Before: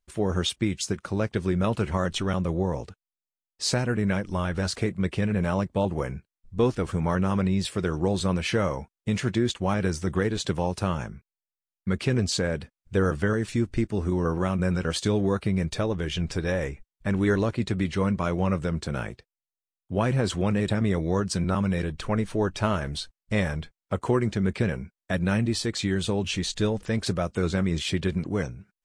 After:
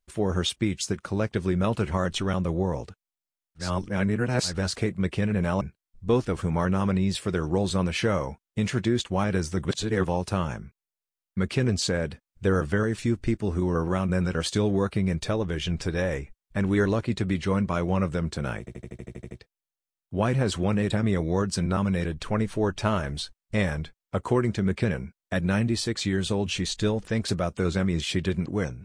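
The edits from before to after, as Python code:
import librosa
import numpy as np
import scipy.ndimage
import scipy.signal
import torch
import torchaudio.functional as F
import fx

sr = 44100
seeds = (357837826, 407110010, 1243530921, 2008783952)

y = fx.edit(x, sr, fx.reverse_span(start_s=3.63, length_s=0.87, crossfade_s=0.16),
    fx.cut(start_s=5.61, length_s=0.5),
    fx.reverse_span(start_s=10.15, length_s=0.4),
    fx.stutter(start_s=19.09, slice_s=0.08, count=10), tone=tone)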